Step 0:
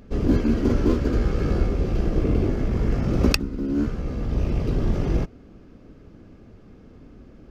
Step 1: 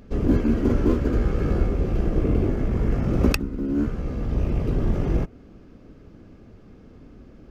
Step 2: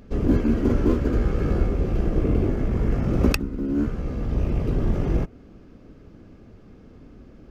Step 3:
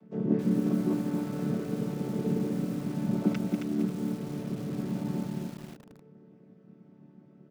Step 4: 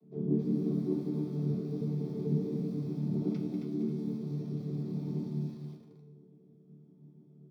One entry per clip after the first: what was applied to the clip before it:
dynamic bell 4.7 kHz, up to -7 dB, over -55 dBFS, Q 1.1
no audible change
vocoder on a held chord major triad, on D3; multi-tap echo 175/193 ms -19/-9.5 dB; bit-crushed delay 269 ms, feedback 35%, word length 7-bit, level -4 dB; trim -4 dB
feedback comb 75 Hz, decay 0.89 s, harmonics all, mix 80%; flange 1.5 Hz, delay 4.1 ms, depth 9.2 ms, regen -47%; reverberation RT60 0.20 s, pre-delay 3 ms, DRR 2 dB; trim -5.5 dB

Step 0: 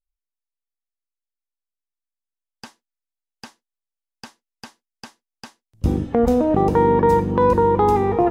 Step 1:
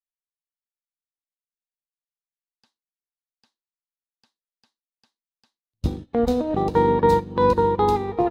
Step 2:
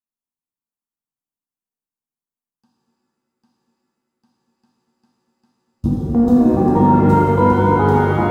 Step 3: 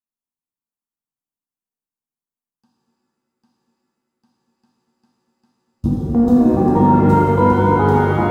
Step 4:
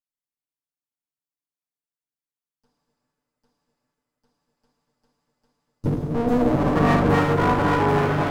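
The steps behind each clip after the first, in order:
peaking EQ 4 kHz +13 dB 0.55 oct; upward expansion 2.5:1, over -33 dBFS
graphic EQ 125/250/500/1000/2000/4000 Hz +7/+11/-5/+7/-10/-9 dB; pitch-shifted reverb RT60 2.8 s, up +7 st, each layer -8 dB, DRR -4.5 dB; trim -4 dB
no audible change
comb filter that takes the minimum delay 6.9 ms; trim -3.5 dB

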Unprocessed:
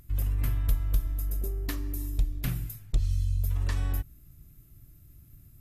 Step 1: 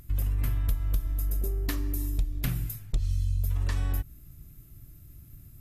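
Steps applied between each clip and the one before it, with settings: compression 2.5:1, threshold -29 dBFS, peak gain reduction 7 dB; trim +4 dB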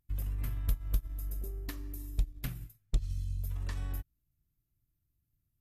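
upward expansion 2.5:1, over -41 dBFS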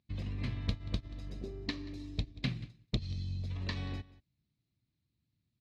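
in parallel at -7 dB: crossover distortion -53.5 dBFS; on the sum: cabinet simulation 110–4900 Hz, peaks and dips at 220 Hz +7 dB, 830 Hz -4 dB, 1.4 kHz -9 dB, 2.3 kHz +4 dB, 4.1 kHz +9 dB; delay 183 ms -20 dB; trim +3 dB

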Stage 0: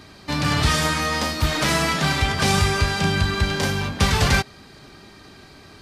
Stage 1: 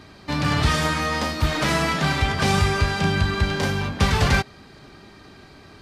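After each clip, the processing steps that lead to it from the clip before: treble shelf 4.2 kHz -7 dB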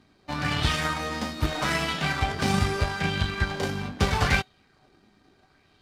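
feedback comb 750 Hz, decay 0.17 s, harmonics all, mix 70%; power-law waveshaper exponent 1.4; sweeping bell 0.78 Hz 210–3300 Hz +7 dB; trim +7.5 dB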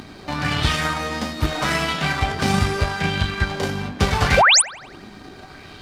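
upward compressor, threshold -29 dBFS; painted sound rise, 4.37–4.62 s, 460–11000 Hz -17 dBFS; feedback echo behind a band-pass 87 ms, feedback 54%, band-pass 1.2 kHz, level -13.5 dB; trim +4.5 dB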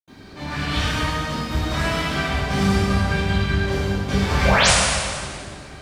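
reverberation RT60 2.3 s, pre-delay 76 ms; trim -1 dB

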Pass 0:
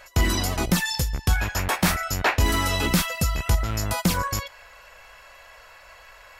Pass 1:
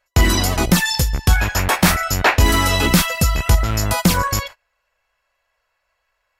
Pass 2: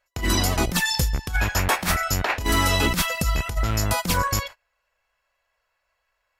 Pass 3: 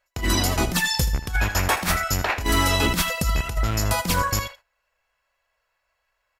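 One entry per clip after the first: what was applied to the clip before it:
gate -38 dBFS, range -30 dB; trim +7 dB
compressor with a negative ratio -15 dBFS, ratio -0.5; trim -5 dB
delay 79 ms -13.5 dB

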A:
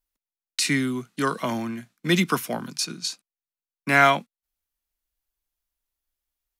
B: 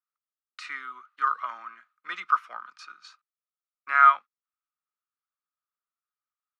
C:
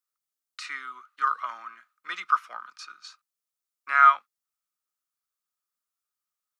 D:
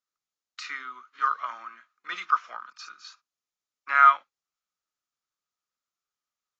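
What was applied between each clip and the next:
ladder band-pass 1.3 kHz, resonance 85%; trim +3 dB
tone controls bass -2 dB, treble +8 dB
AAC 24 kbps 16 kHz

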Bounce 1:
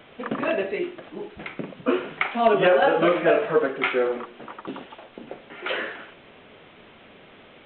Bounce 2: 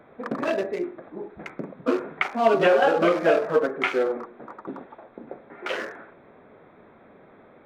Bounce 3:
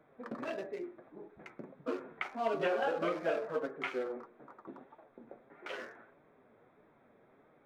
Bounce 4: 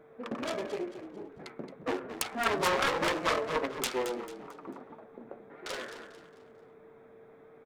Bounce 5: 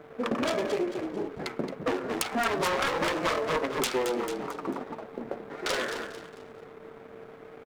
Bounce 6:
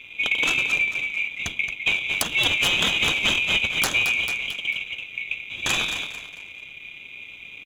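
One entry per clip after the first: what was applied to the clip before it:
local Wiener filter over 15 samples; bass shelf 85 Hz -8 dB
flange 1.6 Hz, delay 6.2 ms, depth 2.8 ms, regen +57%; trim -9 dB
self-modulated delay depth 0.63 ms; whistle 450 Hz -60 dBFS; frequency-shifting echo 222 ms, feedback 37%, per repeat -35 Hz, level -11 dB; trim +5.5 dB
compression 6:1, threshold -35 dBFS, peak gain reduction 11.5 dB; waveshaping leveller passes 2; trim +3.5 dB
split-band scrambler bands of 2 kHz; trim +6 dB

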